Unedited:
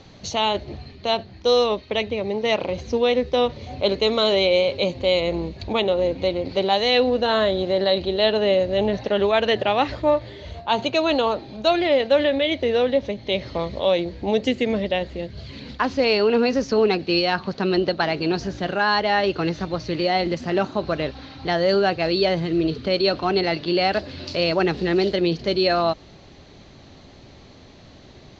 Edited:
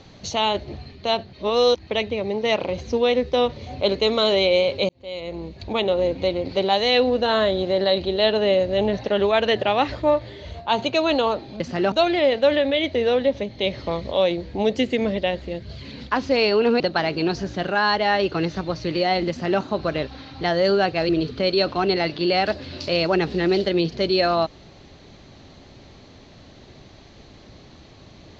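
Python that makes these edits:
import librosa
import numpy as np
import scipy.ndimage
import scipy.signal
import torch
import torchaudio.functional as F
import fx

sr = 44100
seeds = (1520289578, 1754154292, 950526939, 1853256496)

y = fx.edit(x, sr, fx.reverse_span(start_s=1.33, length_s=0.54),
    fx.fade_in_span(start_s=4.89, length_s=1.04),
    fx.cut(start_s=16.48, length_s=1.36),
    fx.duplicate(start_s=20.33, length_s=0.32, to_s=11.6),
    fx.cut(start_s=22.13, length_s=0.43), tone=tone)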